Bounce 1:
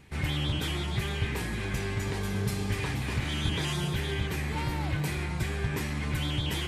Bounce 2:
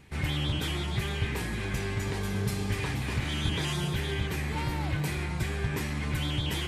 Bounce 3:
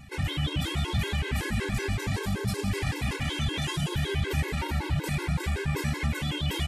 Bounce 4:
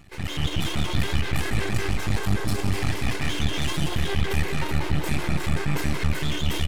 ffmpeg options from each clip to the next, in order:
-af anull
-af "alimiter=level_in=1.41:limit=0.0631:level=0:latency=1:release=30,volume=0.708,aecho=1:1:164|328|492|656|820|984:0.266|0.144|0.0776|0.0419|0.0226|0.0122,afftfilt=real='re*gt(sin(2*PI*5.3*pts/sr)*(1-2*mod(floor(b*sr/1024/280),2)),0)':imag='im*gt(sin(2*PI*5.3*pts/sr)*(1-2*mod(floor(b*sr/1024/280),2)),0)':win_size=1024:overlap=0.75,volume=2.66"
-filter_complex "[0:a]dynaudnorm=f=180:g=3:m=2.11,aeval=exprs='max(val(0),0)':c=same,asplit=2[s0][s1];[s1]adelay=202,lowpass=f=2000:p=1,volume=0.501,asplit=2[s2][s3];[s3]adelay=202,lowpass=f=2000:p=1,volume=0.53,asplit=2[s4][s5];[s5]adelay=202,lowpass=f=2000:p=1,volume=0.53,asplit=2[s6][s7];[s7]adelay=202,lowpass=f=2000:p=1,volume=0.53,asplit=2[s8][s9];[s9]adelay=202,lowpass=f=2000:p=1,volume=0.53,asplit=2[s10][s11];[s11]adelay=202,lowpass=f=2000:p=1,volume=0.53,asplit=2[s12][s13];[s13]adelay=202,lowpass=f=2000:p=1,volume=0.53[s14];[s0][s2][s4][s6][s8][s10][s12][s14]amix=inputs=8:normalize=0"

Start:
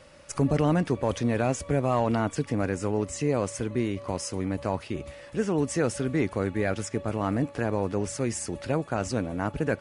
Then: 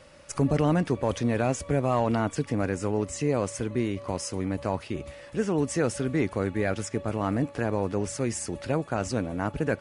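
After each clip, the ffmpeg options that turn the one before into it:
-af anull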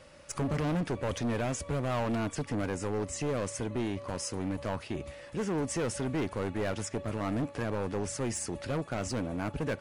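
-af "asoftclip=type=hard:threshold=0.0531,volume=0.794"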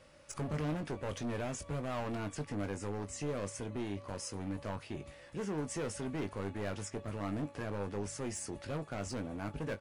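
-filter_complex "[0:a]asplit=2[s0][s1];[s1]adelay=20,volume=0.376[s2];[s0][s2]amix=inputs=2:normalize=0,volume=0.473"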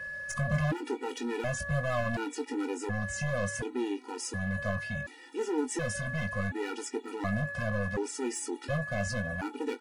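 -af "aeval=exprs='val(0)+0.00562*sin(2*PI*1700*n/s)':c=same,afftfilt=real='re*gt(sin(2*PI*0.69*pts/sr)*(1-2*mod(floor(b*sr/1024/250),2)),0)':imag='im*gt(sin(2*PI*0.69*pts/sr)*(1-2*mod(floor(b*sr/1024/250),2)),0)':win_size=1024:overlap=0.75,volume=2.66"

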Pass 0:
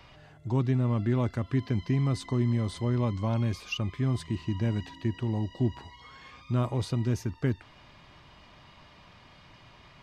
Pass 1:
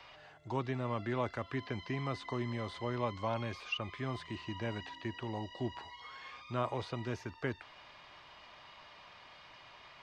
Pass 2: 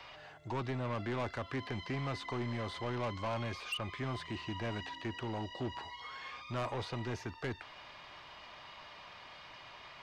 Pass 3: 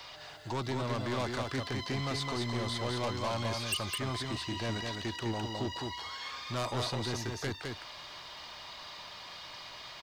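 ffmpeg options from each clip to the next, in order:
-filter_complex "[0:a]acrossover=split=3100[s0][s1];[s1]acompressor=threshold=0.002:ratio=4:attack=1:release=60[s2];[s0][s2]amix=inputs=2:normalize=0,acrossover=split=450 6600:gain=0.178 1 0.224[s3][s4][s5];[s3][s4][s5]amix=inputs=3:normalize=0,volume=1.12"
-af "asoftclip=type=tanh:threshold=0.0168,volume=1.5"
-af "aexciter=amount=3:drive=6:freq=3600,aecho=1:1:209:0.631,volume=1.26"

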